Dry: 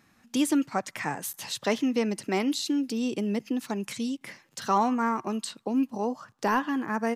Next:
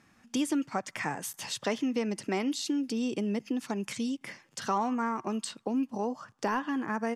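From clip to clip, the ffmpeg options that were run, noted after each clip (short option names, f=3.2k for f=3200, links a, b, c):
-af "lowpass=10k,bandreject=f=4k:w=12,acompressor=threshold=-29dB:ratio=2"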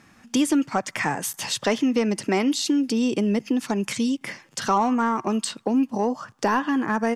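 -af "asoftclip=type=tanh:threshold=-17dB,volume=9dB"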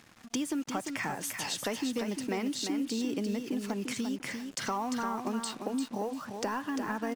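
-af "acompressor=threshold=-34dB:ratio=2.5,aecho=1:1:347|694|1041:0.473|0.0994|0.0209,acrusher=bits=7:mix=0:aa=0.5,volume=-1.5dB"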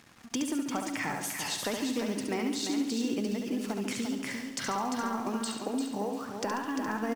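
-af "aecho=1:1:70|140|210|280|350|420|490:0.501|0.266|0.141|0.0746|0.0395|0.021|0.0111"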